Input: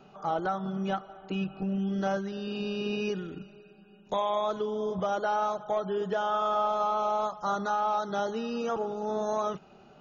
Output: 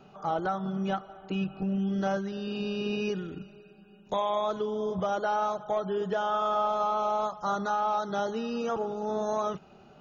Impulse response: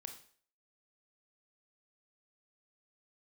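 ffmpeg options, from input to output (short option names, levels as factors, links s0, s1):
-af "equalizer=f=81:t=o:w=1.7:g=4"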